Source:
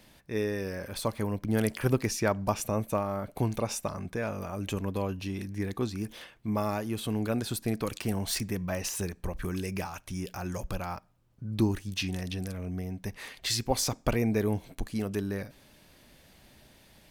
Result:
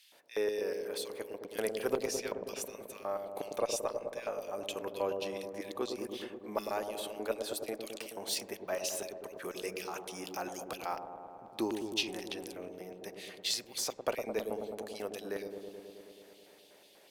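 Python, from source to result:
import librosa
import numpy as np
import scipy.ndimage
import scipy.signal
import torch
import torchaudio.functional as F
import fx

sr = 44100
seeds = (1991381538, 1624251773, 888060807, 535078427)

p1 = fx.filter_lfo_highpass(x, sr, shape='square', hz=4.1, low_hz=480.0, high_hz=3100.0, q=1.6)
p2 = fx.rider(p1, sr, range_db=5, speed_s=2.0)
p3 = fx.cheby_harmonics(p2, sr, harmonics=(2,), levels_db=(-23,), full_scale_db=-12.0)
p4 = p3 + fx.echo_wet_lowpass(p3, sr, ms=107, feedback_pct=79, hz=680.0, wet_db=-4.0, dry=0)
y = F.gain(torch.from_numpy(p4), -5.0).numpy()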